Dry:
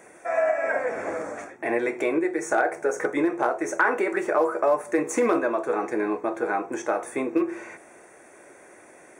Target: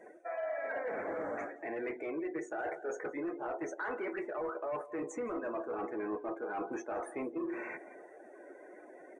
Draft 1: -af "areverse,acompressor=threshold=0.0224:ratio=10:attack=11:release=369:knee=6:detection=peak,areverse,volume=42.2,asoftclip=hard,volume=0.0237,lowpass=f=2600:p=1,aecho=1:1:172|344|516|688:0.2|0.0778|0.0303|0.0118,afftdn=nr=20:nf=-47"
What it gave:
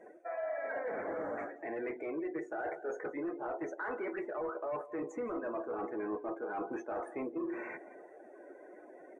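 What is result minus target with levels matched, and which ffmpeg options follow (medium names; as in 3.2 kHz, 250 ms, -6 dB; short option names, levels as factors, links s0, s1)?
8 kHz band -9.5 dB
-af "areverse,acompressor=threshold=0.0224:ratio=10:attack=11:release=369:knee=6:detection=peak,areverse,volume=42.2,asoftclip=hard,volume=0.0237,lowpass=f=6500:p=1,aecho=1:1:172|344|516|688:0.2|0.0778|0.0303|0.0118,afftdn=nr=20:nf=-47"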